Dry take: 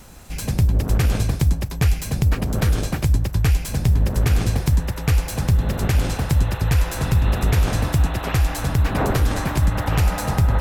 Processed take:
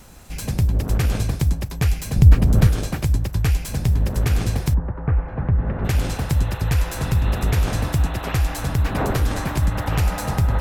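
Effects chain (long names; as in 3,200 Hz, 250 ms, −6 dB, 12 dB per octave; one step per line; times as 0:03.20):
0:02.16–0:02.67: low-shelf EQ 220 Hz +11 dB
0:04.73–0:05.84: low-pass filter 1,300 Hz → 2,100 Hz 24 dB per octave
level −1.5 dB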